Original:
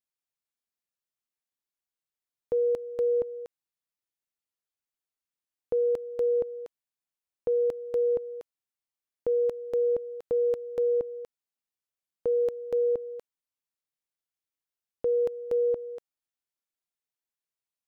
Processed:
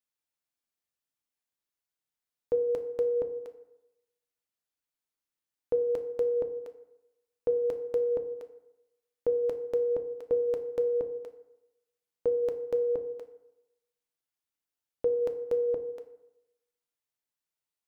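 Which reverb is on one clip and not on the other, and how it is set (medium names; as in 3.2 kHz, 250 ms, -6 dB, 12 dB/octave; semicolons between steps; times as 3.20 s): FDN reverb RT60 0.89 s, low-frequency decay 0.95×, high-frequency decay 0.5×, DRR 7 dB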